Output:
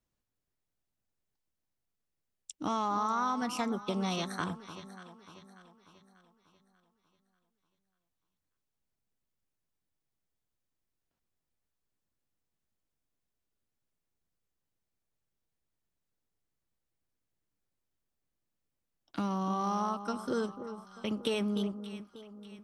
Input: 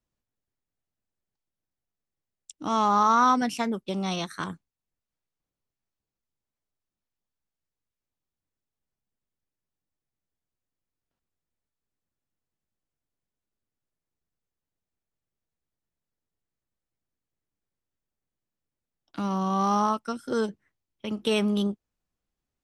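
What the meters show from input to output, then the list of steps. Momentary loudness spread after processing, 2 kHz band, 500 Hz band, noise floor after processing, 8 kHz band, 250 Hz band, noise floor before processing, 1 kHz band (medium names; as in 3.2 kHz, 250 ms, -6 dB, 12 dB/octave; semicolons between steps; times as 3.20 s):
19 LU, -7.0 dB, -6.0 dB, -85 dBFS, -5.5 dB, -6.0 dB, under -85 dBFS, -9.0 dB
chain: compression 4:1, threshold -30 dBFS, peak gain reduction 11.5 dB; on a send: echo whose repeats swap between lows and highs 295 ms, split 1.2 kHz, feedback 66%, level -10.5 dB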